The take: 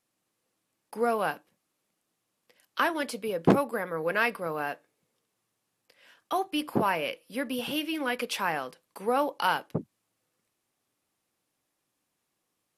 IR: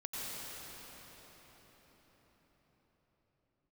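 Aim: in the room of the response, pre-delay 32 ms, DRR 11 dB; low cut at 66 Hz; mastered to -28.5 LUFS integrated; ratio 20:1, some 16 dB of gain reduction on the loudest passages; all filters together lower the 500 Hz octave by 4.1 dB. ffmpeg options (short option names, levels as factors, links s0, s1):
-filter_complex "[0:a]highpass=66,equalizer=f=500:t=o:g=-5,acompressor=threshold=0.0251:ratio=20,asplit=2[s0][s1];[1:a]atrim=start_sample=2205,adelay=32[s2];[s1][s2]afir=irnorm=-1:irlink=0,volume=0.211[s3];[s0][s3]amix=inputs=2:normalize=0,volume=3.16"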